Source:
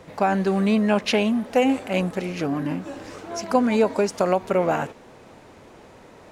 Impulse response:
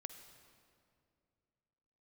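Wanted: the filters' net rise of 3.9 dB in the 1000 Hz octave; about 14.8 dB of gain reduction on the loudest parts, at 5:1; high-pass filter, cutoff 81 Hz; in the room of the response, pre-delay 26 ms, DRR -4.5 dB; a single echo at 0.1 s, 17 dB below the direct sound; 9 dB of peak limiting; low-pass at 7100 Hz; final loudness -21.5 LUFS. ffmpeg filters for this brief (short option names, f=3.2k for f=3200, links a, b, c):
-filter_complex "[0:a]highpass=81,lowpass=7.1k,equalizer=f=1k:t=o:g=5.5,acompressor=threshold=-30dB:ratio=5,alimiter=level_in=0.5dB:limit=-24dB:level=0:latency=1,volume=-0.5dB,aecho=1:1:100:0.141,asplit=2[a][b];[1:a]atrim=start_sample=2205,adelay=26[c];[b][c]afir=irnorm=-1:irlink=0,volume=9dB[d];[a][d]amix=inputs=2:normalize=0,volume=7.5dB"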